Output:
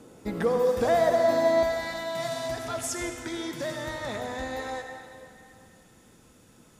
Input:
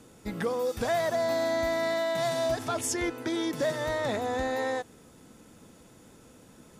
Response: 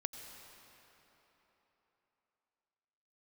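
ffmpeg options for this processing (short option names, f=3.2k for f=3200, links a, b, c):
-filter_complex "[0:a]asetnsamples=n=441:p=0,asendcmd='1.63 equalizer g -4',equalizer=f=450:t=o:w=2.7:g=7[a];[1:a]atrim=start_sample=2205,asetrate=66150,aresample=44100[b];[a][b]afir=irnorm=-1:irlink=0,volume=4dB"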